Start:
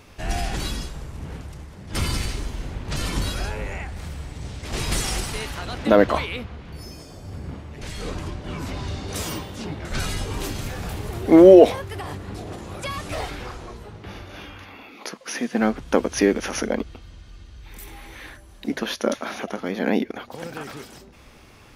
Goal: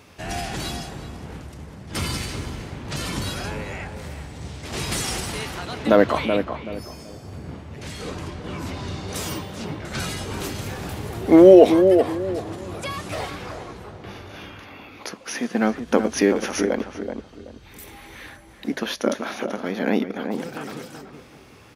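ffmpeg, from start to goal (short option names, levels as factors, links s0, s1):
-filter_complex "[0:a]highpass=86,asplit=2[s0][s1];[s1]adelay=379,lowpass=f=1200:p=1,volume=0.501,asplit=2[s2][s3];[s3]adelay=379,lowpass=f=1200:p=1,volume=0.29,asplit=2[s4][s5];[s5]adelay=379,lowpass=f=1200:p=1,volume=0.29,asplit=2[s6][s7];[s7]adelay=379,lowpass=f=1200:p=1,volume=0.29[s8];[s0][s2][s4][s6][s8]amix=inputs=5:normalize=0"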